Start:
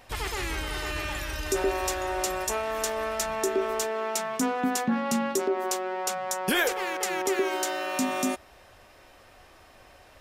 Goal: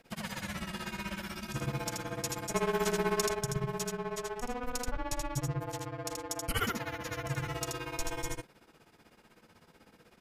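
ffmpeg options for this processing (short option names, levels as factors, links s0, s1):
-filter_complex "[0:a]asettb=1/sr,asplit=3[s0][s1][s2];[s0]atrim=end=2.544[s3];[s1]atrim=start=2.54:end=3.31,asetpts=PTS-STARTPTS,afade=t=in:d=0.004:c=qsin,afade=t=out:st=0.766:d=0.004:c=qsin,acontrast=76[s4];[s2]atrim=start=3.306[s5];[s3][s4]acrossfade=d=0.004:c1=hsin:c2=qsin[s6];[s6][s5]acrossfade=d=0.004:c1=qsin:c2=hsin,asettb=1/sr,asplit=3[s7][s8][s9];[s7]atrim=end=6.614[s10];[s8]atrim=start=6.61:end=7.23,asetpts=PTS-STARTPTS,afade=t=in:d=0.004:c=qsin,afade=t=out:st=0.616:d=0.004:c=qsin,equalizer=f=8500:w=4.8:g=-13.5[s11];[s9]atrim=start=7.226[s12];[s10][s11]acrossfade=d=0.004:c1=hsin:c2=qsin[s13];[s13][s12]acrossfade=d=0.004:c1=qsin:c2=hsin,afreqshift=-250,tremolo=f=16:d=1,aecho=1:1:80:0.708,volume=0.562"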